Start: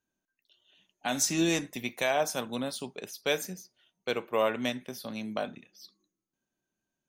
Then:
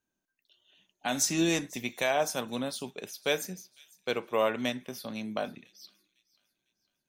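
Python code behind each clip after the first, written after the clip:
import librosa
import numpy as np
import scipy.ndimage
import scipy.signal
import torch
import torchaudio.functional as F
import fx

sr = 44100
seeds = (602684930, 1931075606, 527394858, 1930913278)

y = fx.echo_wet_highpass(x, sr, ms=502, feedback_pct=42, hz=3400.0, wet_db=-20.0)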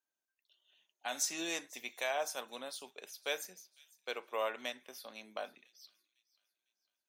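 y = scipy.signal.sosfilt(scipy.signal.butter(2, 540.0, 'highpass', fs=sr, output='sos'), x)
y = y * librosa.db_to_amplitude(-6.5)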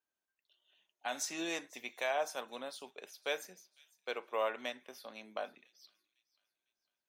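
y = fx.high_shelf(x, sr, hz=4000.0, db=-9.0)
y = y * librosa.db_to_amplitude(2.0)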